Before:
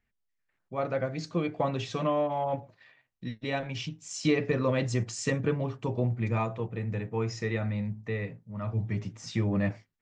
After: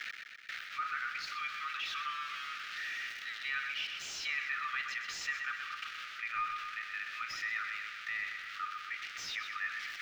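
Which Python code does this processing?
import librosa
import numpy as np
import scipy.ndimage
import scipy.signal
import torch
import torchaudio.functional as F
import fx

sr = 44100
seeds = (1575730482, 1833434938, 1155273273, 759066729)

p1 = x + 0.5 * 10.0 ** (-28.5 / 20.0) * np.diff(np.sign(x), prepend=np.sign(x[:1]))
p2 = scipy.signal.sosfilt(scipy.signal.cheby1(10, 1.0, 1200.0, 'highpass', fs=sr, output='sos'), p1)
p3 = fx.high_shelf(p2, sr, hz=3900.0, db=-11.5)
p4 = fx.quant_float(p3, sr, bits=2)
p5 = 10.0 ** (-38.0 / 20.0) * np.tanh(p4 / 10.0 ** (-38.0 / 20.0))
p6 = p4 + F.gain(torch.from_numpy(p5), -3.0).numpy()
p7 = fx.air_absorb(p6, sr, metres=250.0)
p8 = p7 + fx.echo_feedback(p7, sr, ms=125, feedback_pct=43, wet_db=-10.5, dry=0)
p9 = fx.env_flatten(p8, sr, amount_pct=50)
y = F.gain(torch.from_numpy(p9), 1.0).numpy()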